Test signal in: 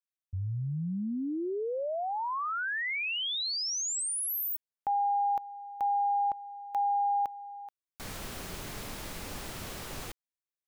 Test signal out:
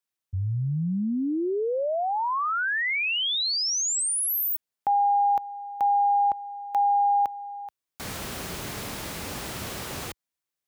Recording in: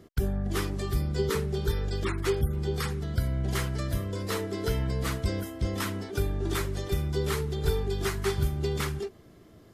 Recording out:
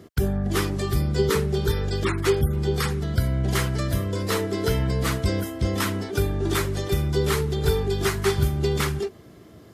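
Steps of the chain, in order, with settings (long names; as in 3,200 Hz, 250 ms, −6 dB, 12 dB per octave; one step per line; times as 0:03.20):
high-pass filter 60 Hz
level +6.5 dB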